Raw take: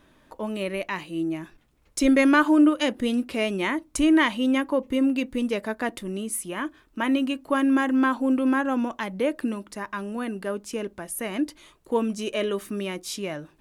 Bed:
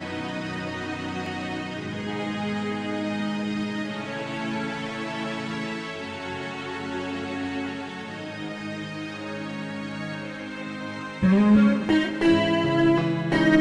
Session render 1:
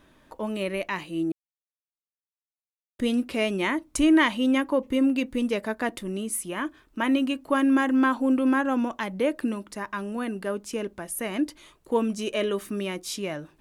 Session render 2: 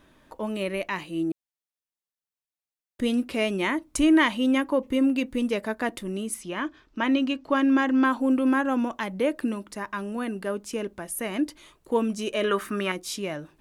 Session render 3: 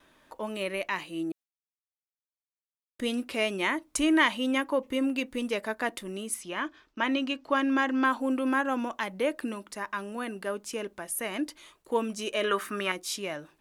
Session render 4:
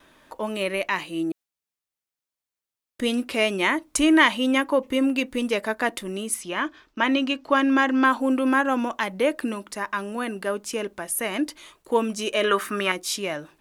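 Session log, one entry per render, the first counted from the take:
0:01.32–0:02.99: silence
0:06.34–0:08.05: high shelf with overshoot 7,400 Hz −11 dB, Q 1.5; 0:12.44–0:12.92: parametric band 1,400 Hz +14 dB 1.3 octaves
noise gate with hold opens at −50 dBFS; low-shelf EQ 330 Hz −10.5 dB
level +6 dB

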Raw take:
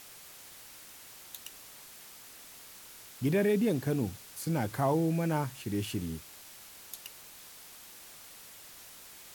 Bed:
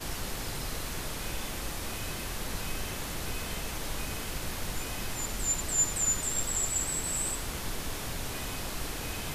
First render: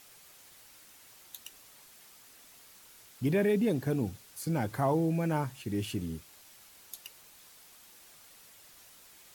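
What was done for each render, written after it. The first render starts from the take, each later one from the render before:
broadband denoise 6 dB, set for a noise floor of −51 dBFS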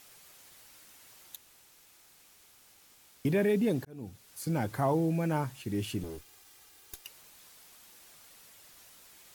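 0:01.36–0:03.25: fill with room tone
0:03.85–0:04.44: fade in
0:06.03–0:07.05: lower of the sound and its delayed copy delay 2.5 ms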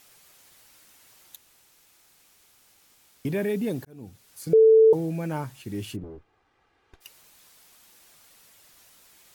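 0:03.33–0:03.93: high-shelf EQ 11,000 Hz +6 dB
0:04.53–0:04.93: beep over 443 Hz −11.5 dBFS
0:05.95–0:07.00: low-pass filter 1,100 Hz → 2,000 Hz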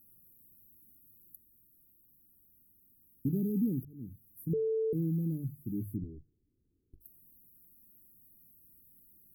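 inverse Chebyshev band-stop filter 870–5,600 Hz, stop band 60 dB
mains-hum notches 50/100/150 Hz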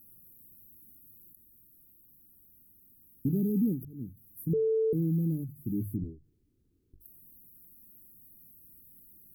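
in parallel at −1.5 dB: brickwall limiter −30.5 dBFS, peak gain reduction 9 dB
on the sum: every ending faded ahead of time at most 150 dB per second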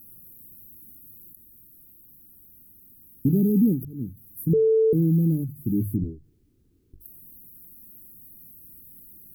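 level +8 dB

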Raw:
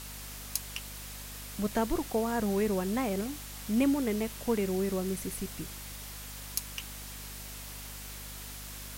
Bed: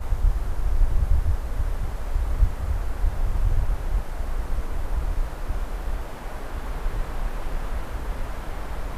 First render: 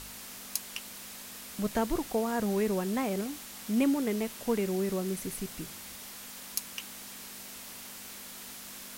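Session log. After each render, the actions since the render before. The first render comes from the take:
hum removal 50 Hz, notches 3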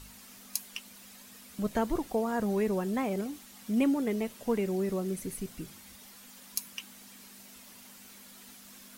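broadband denoise 9 dB, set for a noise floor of −45 dBFS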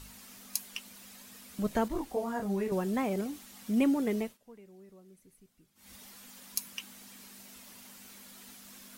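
0:01.88–0:02.72: micro pitch shift up and down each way 26 cents
0:04.19–0:05.94: duck −23.5 dB, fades 0.19 s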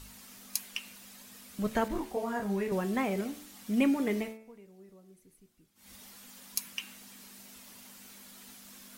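dynamic equaliser 2,100 Hz, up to +5 dB, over −52 dBFS, Q 0.92
hum removal 73.61 Hz, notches 38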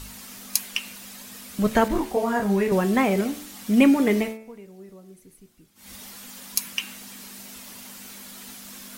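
level +10 dB
brickwall limiter −2 dBFS, peak gain reduction 1.5 dB

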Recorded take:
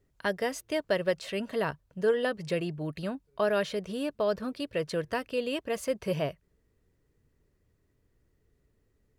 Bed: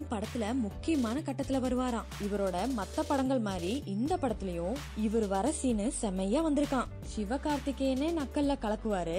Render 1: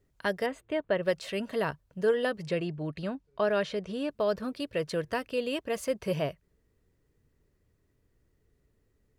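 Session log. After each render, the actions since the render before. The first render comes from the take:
0:00.46–0:01.03: moving average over 8 samples
0:02.48–0:04.09: high-frequency loss of the air 57 metres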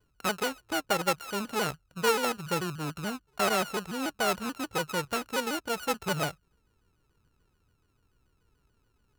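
samples sorted by size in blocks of 32 samples
pitch modulation by a square or saw wave saw down 6.9 Hz, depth 160 cents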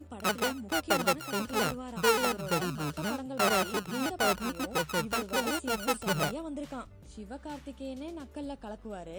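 mix in bed −9.5 dB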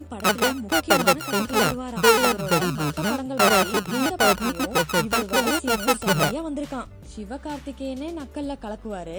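level +9 dB

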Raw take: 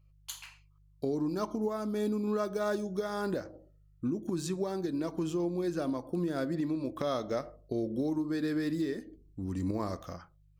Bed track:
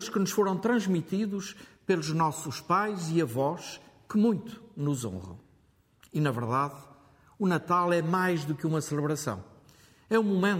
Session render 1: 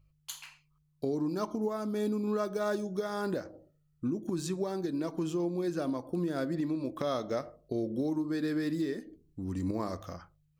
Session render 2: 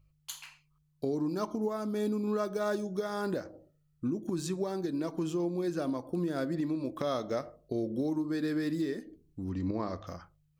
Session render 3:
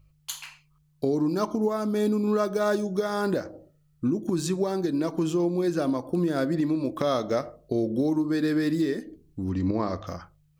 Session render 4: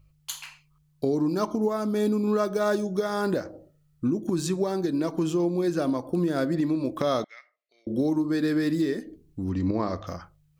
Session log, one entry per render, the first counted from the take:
hum removal 50 Hz, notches 2
0:09.49–0:10.07: low-pass filter 5,000 Hz 24 dB per octave
level +7 dB
0:07.24–0:07.87: four-pole ladder band-pass 2,300 Hz, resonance 70%

